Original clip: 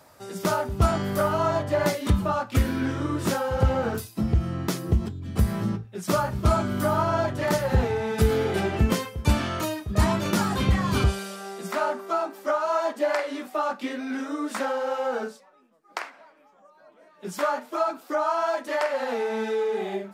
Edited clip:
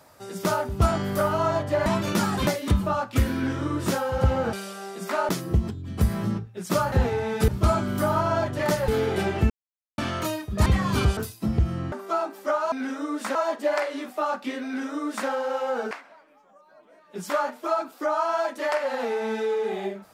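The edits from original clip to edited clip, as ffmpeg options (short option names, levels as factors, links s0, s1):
-filter_complex "[0:a]asplit=16[s0][s1][s2][s3][s4][s5][s6][s7][s8][s9][s10][s11][s12][s13][s14][s15];[s0]atrim=end=1.862[s16];[s1]atrim=start=10.038:end=10.652[s17];[s2]atrim=start=1.858:end=3.922[s18];[s3]atrim=start=11.158:end=11.922[s19];[s4]atrim=start=4.668:end=6.302[s20];[s5]atrim=start=7.698:end=8.262[s21];[s6]atrim=start=6.298:end=7.702[s22];[s7]atrim=start=8.258:end=8.88,asetpts=PTS-STARTPTS,afade=t=out:st=0.618:d=0.004:c=hsin[s23];[s8]atrim=start=8.88:end=9.36,asetpts=PTS-STARTPTS,volume=0[s24];[s9]atrim=start=9.36:end=10.042,asetpts=PTS-STARTPTS,afade=t=in:d=0.004:c=hsin[s25];[s10]atrim=start=10.648:end=11.162[s26];[s11]atrim=start=3.918:end=4.672[s27];[s12]atrim=start=11.918:end=12.722[s28];[s13]atrim=start=14.018:end=14.652[s29];[s14]atrim=start=12.718:end=15.282[s30];[s15]atrim=start=15.998[s31];[s16][s17]acrossfade=d=0.004:c1=hsin:c2=hsin[s32];[s32][s18]acrossfade=d=0.004:c1=hsin:c2=hsin[s33];[s33][s19]acrossfade=d=0.004:c1=hsin:c2=hsin[s34];[s34][s20]acrossfade=d=0.004:c1=hsin:c2=hsin[s35];[s35][s21]acrossfade=d=0.004:c1=hsin:c2=hsin[s36];[s36][s22]acrossfade=d=0.004:c1=hsin:c2=hsin[s37];[s23][s24][s25]concat=n=3:v=0:a=1[s38];[s37][s38]acrossfade=d=0.004:c1=hsin:c2=hsin[s39];[s39][s26]acrossfade=d=0.004:c1=hsin:c2=hsin[s40];[s40][s27]acrossfade=d=0.004:c1=hsin:c2=hsin[s41];[s41][s28]acrossfade=d=0.004:c1=hsin:c2=hsin[s42];[s42][s29]acrossfade=d=0.004:c1=hsin:c2=hsin[s43];[s43][s30]acrossfade=d=0.004:c1=hsin:c2=hsin[s44];[s44][s31]acrossfade=d=0.004:c1=hsin:c2=hsin"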